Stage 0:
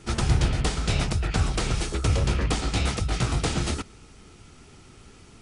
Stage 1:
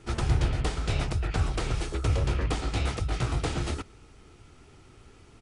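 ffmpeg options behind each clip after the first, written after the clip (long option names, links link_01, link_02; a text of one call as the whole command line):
ffmpeg -i in.wav -af "firequalizer=gain_entry='entry(120,0);entry(190,-6);entry(310,0);entry(5500,-6)':delay=0.05:min_phase=1,volume=-2.5dB" out.wav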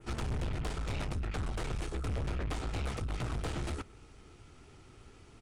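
ffmpeg -i in.wav -af "adynamicequalizer=threshold=0.002:dfrequency=4800:dqfactor=1:tfrequency=4800:tqfactor=1:attack=5:release=100:ratio=0.375:range=2:mode=cutabove:tftype=bell,aeval=exprs='(tanh(35.5*val(0)+0.4)-tanh(0.4))/35.5':channel_layout=same,volume=-1dB" out.wav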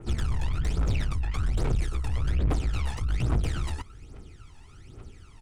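ffmpeg -i in.wav -af "aphaser=in_gain=1:out_gain=1:delay=1.2:decay=0.75:speed=1.2:type=triangular" out.wav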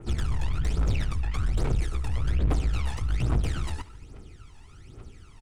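ffmpeg -i in.wav -af "aecho=1:1:73|146|219|292|365:0.126|0.0743|0.0438|0.0259|0.0153" out.wav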